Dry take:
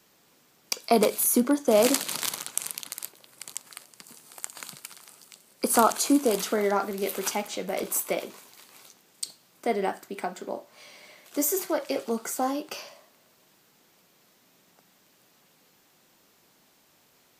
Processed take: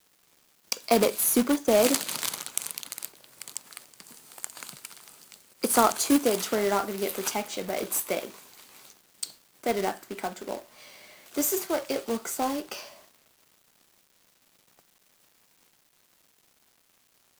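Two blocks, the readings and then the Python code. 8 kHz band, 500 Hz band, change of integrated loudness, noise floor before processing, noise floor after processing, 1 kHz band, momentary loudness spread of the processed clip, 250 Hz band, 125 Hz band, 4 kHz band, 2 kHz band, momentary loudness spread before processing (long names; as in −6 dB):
−0.5 dB, −1.0 dB, −0.5 dB, −63 dBFS, −66 dBFS, −0.5 dB, 18 LU, −1.0 dB, −0.5 dB, +0.5 dB, +0.5 dB, 18 LU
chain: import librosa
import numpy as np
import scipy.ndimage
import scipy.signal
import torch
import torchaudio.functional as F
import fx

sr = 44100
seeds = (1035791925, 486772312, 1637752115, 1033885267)

y = fx.quant_companded(x, sr, bits=4)
y = F.gain(torch.from_numpy(y), -1.0).numpy()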